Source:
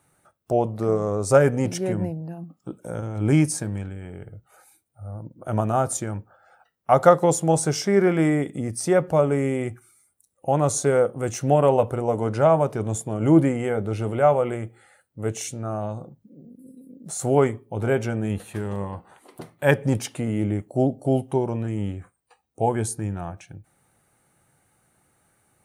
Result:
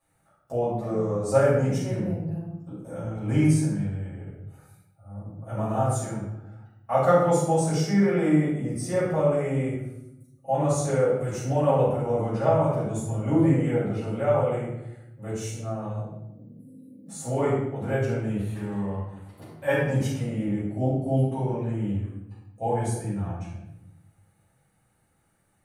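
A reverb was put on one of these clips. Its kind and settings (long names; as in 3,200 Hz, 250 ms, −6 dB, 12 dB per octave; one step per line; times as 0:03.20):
rectangular room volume 270 cubic metres, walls mixed, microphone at 6 metres
level −18.5 dB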